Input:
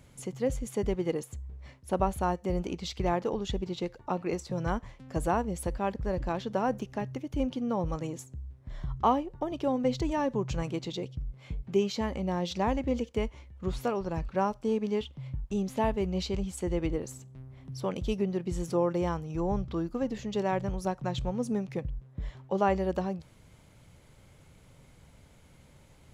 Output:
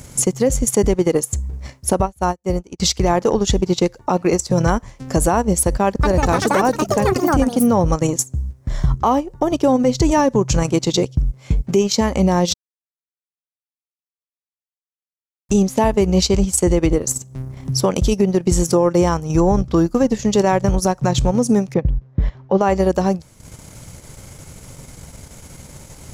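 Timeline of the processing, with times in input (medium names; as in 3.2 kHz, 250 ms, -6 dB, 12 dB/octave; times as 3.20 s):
2.01–2.80 s: upward expansion 2.5:1, over -45 dBFS
5.84–8.58 s: ever faster or slower copies 193 ms, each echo +7 st, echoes 2
12.54–15.49 s: mute
21.74–22.61 s: distance through air 240 m
whole clip: resonant high shelf 4.5 kHz +7.5 dB, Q 1.5; transient shaper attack +2 dB, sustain -10 dB; loudness maximiser +23 dB; trim -5.5 dB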